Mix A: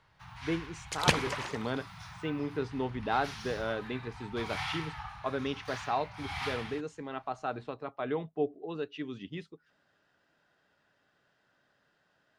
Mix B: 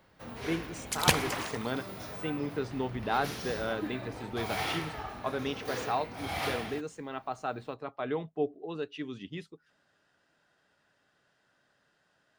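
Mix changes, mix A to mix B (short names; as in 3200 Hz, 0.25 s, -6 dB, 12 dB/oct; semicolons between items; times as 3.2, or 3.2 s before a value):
first sound: remove elliptic band-stop 160–860 Hz; master: remove air absorption 64 m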